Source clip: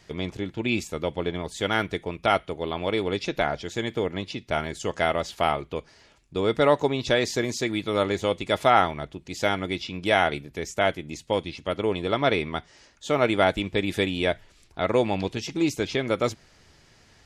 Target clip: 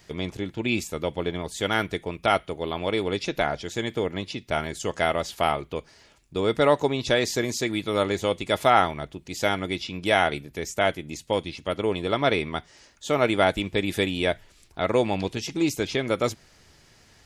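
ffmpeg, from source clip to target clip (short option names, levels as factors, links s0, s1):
-af "highshelf=f=11000:g=12"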